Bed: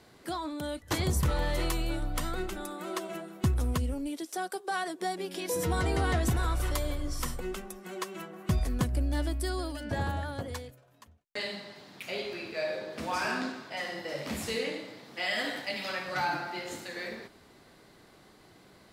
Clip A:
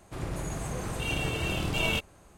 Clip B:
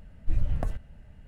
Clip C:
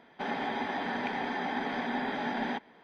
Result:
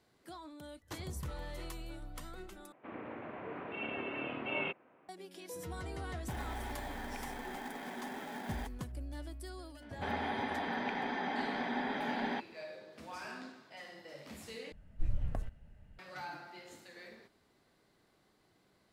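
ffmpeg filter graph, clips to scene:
ffmpeg -i bed.wav -i cue0.wav -i cue1.wav -i cue2.wav -filter_complex "[3:a]asplit=2[link_01][link_02];[0:a]volume=-14dB[link_03];[1:a]highpass=frequency=260:width_type=q:width=0.5412,highpass=frequency=260:width_type=q:width=1.307,lowpass=frequency=2700:width_type=q:width=0.5176,lowpass=frequency=2700:width_type=q:width=0.7071,lowpass=frequency=2700:width_type=q:width=1.932,afreqshift=-53[link_04];[link_01]acrusher=bits=3:mode=log:mix=0:aa=0.000001[link_05];[link_03]asplit=3[link_06][link_07][link_08];[link_06]atrim=end=2.724[link_09];[link_04]atrim=end=2.37,asetpts=PTS-STARTPTS,volume=-5dB[link_10];[link_07]atrim=start=5.086:end=14.724[link_11];[2:a]atrim=end=1.27,asetpts=PTS-STARTPTS,volume=-8dB[link_12];[link_08]atrim=start=15.986[link_13];[link_05]atrim=end=2.83,asetpts=PTS-STARTPTS,volume=-11dB,afade=type=in:duration=0.004:curve=hsin,afade=type=out:start_time=2.826:duration=0.004:curve=hsin,adelay=6090[link_14];[link_02]atrim=end=2.83,asetpts=PTS-STARTPTS,volume=-3.5dB,afade=type=in:duration=0.004:curve=hsin,afade=type=out:start_time=2.826:duration=0.004:curve=hsin,adelay=9820[link_15];[link_09][link_10]acrossfade=duration=0.004:curve1=hsin:curve2=hsin[link_16];[link_16][link_11]acrossfade=duration=0.004:curve1=hsin:curve2=hsin[link_17];[link_17][link_12]acrossfade=duration=0.004:curve1=hsin:curve2=hsin[link_18];[link_18][link_13]acrossfade=duration=0.004:curve1=hsin:curve2=hsin[link_19];[link_19][link_14][link_15]amix=inputs=3:normalize=0" out.wav

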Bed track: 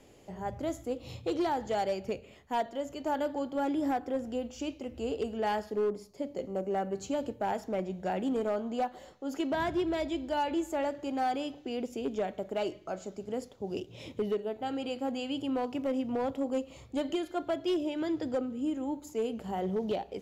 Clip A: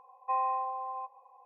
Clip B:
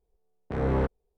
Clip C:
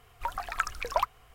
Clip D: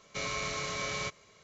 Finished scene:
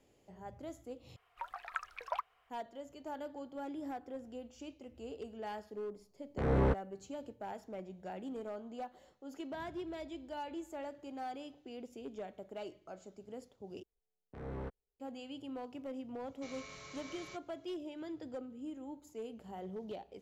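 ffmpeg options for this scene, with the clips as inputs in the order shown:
ffmpeg -i bed.wav -i cue0.wav -i cue1.wav -i cue2.wav -i cue3.wav -filter_complex "[2:a]asplit=2[link_01][link_02];[0:a]volume=-12dB[link_03];[3:a]acrossover=split=480 3600:gain=0.126 1 0.224[link_04][link_05][link_06];[link_04][link_05][link_06]amix=inputs=3:normalize=0[link_07];[link_03]asplit=3[link_08][link_09][link_10];[link_08]atrim=end=1.164[link_11];[link_07]atrim=end=1.34,asetpts=PTS-STARTPTS,volume=-9.5dB[link_12];[link_09]atrim=start=2.496:end=13.834[link_13];[link_02]atrim=end=1.17,asetpts=PTS-STARTPTS,volume=-17dB[link_14];[link_10]atrim=start=14.996[link_15];[link_01]atrim=end=1.17,asetpts=PTS-STARTPTS,volume=-3.5dB,afade=type=in:duration=0.004:curve=hsin,afade=type=out:start_time=1.166:duration=0.004:curve=hsin,adelay=5870[link_16];[4:a]atrim=end=1.43,asetpts=PTS-STARTPTS,volume=-16dB,afade=type=in:duration=0.004:curve=hsin,afade=type=out:start_time=1.426:duration=0.004:curve=hsin,adelay=16270[link_17];[link_11][link_12]acrossfade=duration=0.004:curve1=hsin:curve2=hsin[link_18];[link_18][link_13]acrossfade=duration=0.004:curve1=hsin:curve2=hsin[link_19];[link_19][link_14]acrossfade=duration=0.004:curve1=hsin:curve2=hsin[link_20];[link_20][link_15]acrossfade=duration=0.004:curve1=hsin:curve2=hsin[link_21];[link_21][link_16][link_17]amix=inputs=3:normalize=0" out.wav

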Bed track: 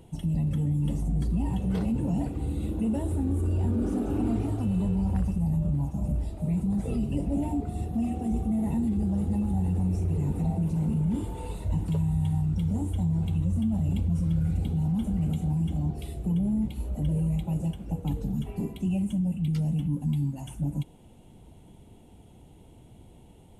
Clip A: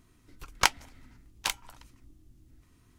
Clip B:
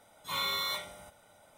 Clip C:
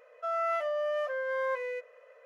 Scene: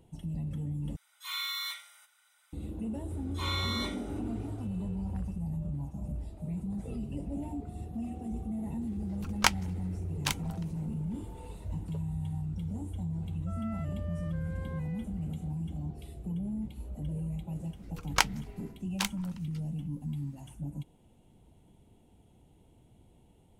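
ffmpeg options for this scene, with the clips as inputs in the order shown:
ffmpeg -i bed.wav -i cue0.wav -i cue1.wav -i cue2.wav -filter_complex "[2:a]asplit=2[link_01][link_02];[1:a]asplit=2[link_03][link_04];[0:a]volume=-9dB[link_05];[link_01]highpass=frequency=1300:width=0.5412,highpass=frequency=1300:width=1.3066[link_06];[link_02]lowpass=8800[link_07];[link_05]asplit=2[link_08][link_09];[link_08]atrim=end=0.964[link_10];[link_06]atrim=end=1.57,asetpts=PTS-STARTPTS,volume=-2dB[link_11];[link_09]atrim=start=2.526[link_12];[link_07]atrim=end=1.57,asetpts=PTS-STARTPTS,volume=-2dB,afade=type=in:duration=0.004:curve=hsin,afade=type=out:start_time=1.566:duration=0.004:curve=hsin,adelay=3100[link_13];[link_03]atrim=end=2.98,asetpts=PTS-STARTPTS,volume=-1.5dB,afade=type=in:duration=0.004:curve=hsin,afade=type=out:start_time=2.976:duration=0.004:curve=hsin,adelay=8810[link_14];[3:a]atrim=end=2.25,asetpts=PTS-STARTPTS,volume=-16dB,afade=type=in:duration=0.004:curve=hsin,afade=type=out:start_time=2.246:duration=0.004:curve=hsin,adelay=13240[link_15];[link_04]atrim=end=2.98,asetpts=PTS-STARTPTS,volume=-2dB,afade=type=in:duration=0.004:curve=hsin,afade=type=out:start_time=2.976:duration=0.004:curve=hsin,adelay=17550[link_16];[link_10][link_11]acrossfade=duration=0.004:curve1=hsin:curve2=hsin[link_17];[link_17][link_12]acrossfade=duration=0.004:curve1=hsin:curve2=hsin[link_18];[link_18][link_13][link_14][link_15][link_16]amix=inputs=5:normalize=0" out.wav

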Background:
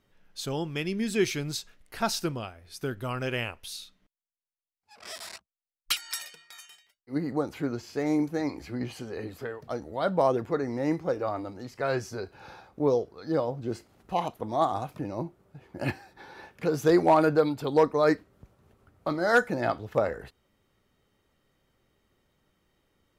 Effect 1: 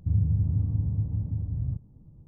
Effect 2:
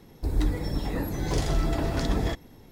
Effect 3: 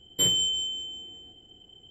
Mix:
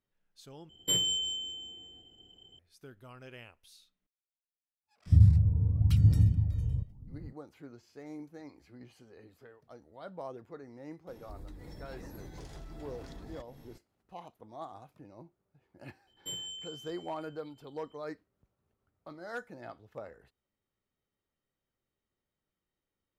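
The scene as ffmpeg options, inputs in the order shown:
ffmpeg -i bed.wav -i cue0.wav -i cue1.wav -i cue2.wav -filter_complex "[3:a]asplit=2[link_01][link_02];[0:a]volume=-18.5dB[link_03];[1:a]aphaser=in_gain=1:out_gain=1:delay=2.2:decay=0.61:speed=0.92:type=sinusoidal[link_04];[2:a]acompressor=threshold=-37dB:ratio=12:attack=3.2:release=178:knee=1:detection=rms[link_05];[link_03]asplit=2[link_06][link_07];[link_06]atrim=end=0.694[link_08];[link_01]atrim=end=1.9,asetpts=PTS-STARTPTS,volume=-5dB[link_09];[link_07]atrim=start=2.586[link_10];[link_04]atrim=end=2.27,asetpts=PTS-STARTPTS,volume=-2dB,afade=type=in:duration=0.004:curve=hsin,afade=type=out:start_time=2.266:duration=0.004:curve=hsin,adelay=5060[link_11];[link_05]atrim=end=2.71,asetpts=PTS-STARTPTS,volume=-4.5dB,afade=type=in:duration=0.004:curve=hsin,afade=type=out:start_time=2.706:duration=0.004:curve=hsin,adelay=11070[link_12];[link_02]atrim=end=1.9,asetpts=PTS-STARTPTS,volume=-16.5dB,afade=type=in:duration=0.004:curve=hsin,afade=type=out:start_time=1.896:duration=0.004:curve=hsin,adelay=16070[link_13];[link_08][link_09]acrossfade=duration=0.004:curve1=hsin:curve2=hsin[link_14];[link_14][link_10]acrossfade=duration=0.004:curve1=hsin:curve2=hsin[link_15];[link_15][link_11][link_12][link_13]amix=inputs=4:normalize=0" out.wav

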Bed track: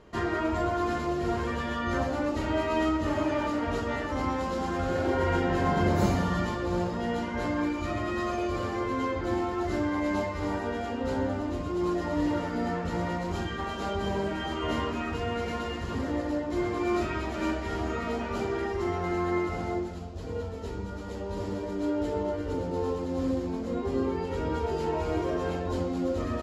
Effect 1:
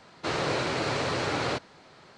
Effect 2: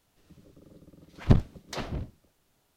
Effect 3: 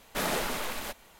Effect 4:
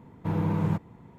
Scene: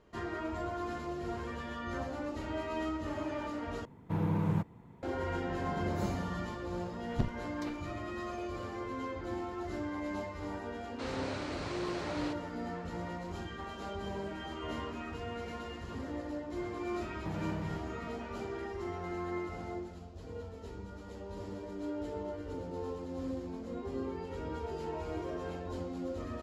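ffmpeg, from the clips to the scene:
ffmpeg -i bed.wav -i cue0.wav -i cue1.wav -i cue2.wav -i cue3.wav -filter_complex "[4:a]asplit=2[link_01][link_02];[0:a]volume=-9.5dB[link_03];[link_02]acompressor=threshold=-34dB:ratio=6:attack=3.2:release=140:knee=1:detection=peak[link_04];[link_03]asplit=2[link_05][link_06];[link_05]atrim=end=3.854[link_07];[link_01]atrim=end=1.18,asetpts=PTS-STARTPTS,volume=-4.5dB[link_08];[link_06]atrim=start=5.026[link_09];[2:a]atrim=end=2.76,asetpts=PTS-STARTPTS,volume=-13dB,afade=type=in:duration=0.004:curve=hsin,afade=type=out:start_time=2.756:duration=0.004:curve=hsin,adelay=259749S[link_10];[1:a]atrim=end=2.17,asetpts=PTS-STARTPTS,volume=-12.5dB,afade=type=in:duration=0.004:curve=hsin,afade=type=out:start_time=2.166:duration=0.004:curve=hsin,adelay=10750[link_11];[link_04]atrim=end=1.18,asetpts=PTS-STARTPTS,volume=-1.5dB,afade=type=in:duration=0.004:curve=hsin,afade=type=out:start_time=1.176:duration=0.004:curve=hsin,adelay=17010[link_12];[link_07][link_08]acrossfade=duration=0.004:curve1=hsin:curve2=hsin[link_13];[link_13][link_09]acrossfade=duration=0.004:curve1=hsin:curve2=hsin[link_14];[link_14][link_10][link_11][link_12]amix=inputs=4:normalize=0" out.wav

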